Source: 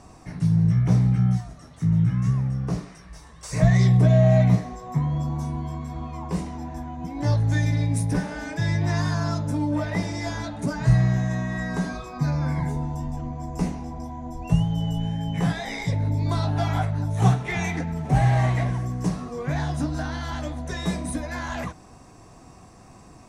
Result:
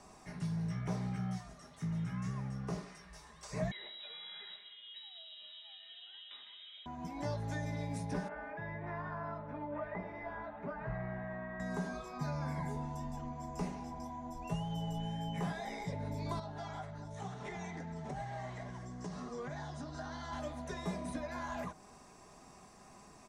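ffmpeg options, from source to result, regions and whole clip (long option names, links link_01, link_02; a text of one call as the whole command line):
ffmpeg -i in.wav -filter_complex "[0:a]asettb=1/sr,asplit=3[link_01][link_02][link_03];[link_01]atrim=end=3.714[link_04];[link_02]atrim=start=3.71:end=6.86,asetpts=PTS-STARTPTS,afade=type=in:duration=0.004:curve=qsin,afade=type=out:start_time=3.146:duration=0.004:curve=qsin,highpass=frequency=980:poles=1,aecho=1:1:126:0.178,atrim=end_sample=138915,lowpass=frequency=3400:width_type=q:width=0.5098,lowpass=frequency=3400:width_type=q:width=0.6013,lowpass=frequency=3400:width_type=q:width=0.9,lowpass=frequency=3400:width_type=q:width=2.563,afreqshift=-4000[link_05];[link_03]atrim=start=6.856[link_06];[link_04][link_05]acrossfade=duration=0.004:curve1=hsin:curve2=qsin[link_07];[link_07][link_06]acrossfade=duration=0.004:curve1=qsin:curve2=hsin,asettb=1/sr,asplit=3[link_08][link_09][link_10];[link_08]atrim=end=8.284[link_11];[link_09]atrim=start=8.28:end=11.6,asetpts=PTS-STARTPTS,afade=type=in:duration=0.004:curve=qsin,afade=type=out:start_time=3.316:duration=0.004:curve=qsin,lowpass=frequency=2100:width=0.5412,lowpass=frequency=2100:width=1.3066,equalizer=frequency=160:width_type=o:width=2.7:gain=-8.5[link_12];[link_10]atrim=start=11.596[link_13];[link_11][link_12]acrossfade=duration=0.004:curve1=hsin:curve2=qsin[link_14];[link_14][link_13]acrossfade=duration=0.004:curve1=qsin:curve2=hsin,asettb=1/sr,asplit=3[link_15][link_16][link_17];[link_15]atrim=end=16.394[link_18];[link_16]atrim=start=16.39:end=20.33,asetpts=PTS-STARTPTS,afade=type=in:duration=0.004:curve=qsin,afade=type=out:start_time=3.936:duration=0.004:curve=qsin,lowpass=frequency=8000:width=0.5412,lowpass=frequency=8000:width=1.3066,acompressor=threshold=-28dB:ratio=6:attack=3.2:release=140:knee=1:detection=peak,equalizer=frequency=2500:width_type=o:width=0.31:gain=-6.5[link_19];[link_17]atrim=start=20.326[link_20];[link_18][link_19]acrossfade=duration=0.004:curve1=hsin:curve2=qsin[link_21];[link_21][link_20]acrossfade=duration=0.004:curve1=qsin:curve2=hsin,lowshelf=frequency=300:gain=-9.5,aecho=1:1:4.9:0.42,acrossover=split=370|1200|6200[link_22][link_23][link_24][link_25];[link_22]acompressor=threshold=-30dB:ratio=4[link_26];[link_23]acompressor=threshold=-34dB:ratio=4[link_27];[link_24]acompressor=threshold=-47dB:ratio=4[link_28];[link_25]acompressor=threshold=-58dB:ratio=4[link_29];[link_26][link_27][link_28][link_29]amix=inputs=4:normalize=0,volume=-5.5dB" out.wav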